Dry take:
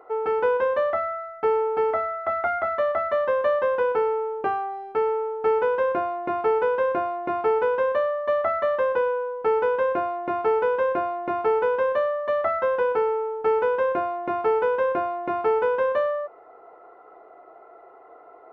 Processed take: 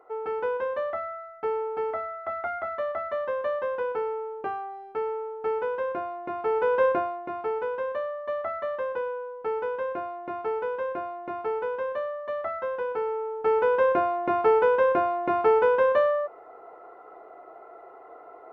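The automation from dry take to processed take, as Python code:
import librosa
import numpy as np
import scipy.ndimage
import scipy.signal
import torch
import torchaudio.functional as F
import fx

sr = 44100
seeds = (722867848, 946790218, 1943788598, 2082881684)

y = fx.gain(x, sr, db=fx.line((6.38, -6.5), (6.85, 2.0), (7.26, -7.5), (12.87, -7.5), (13.84, 1.5)))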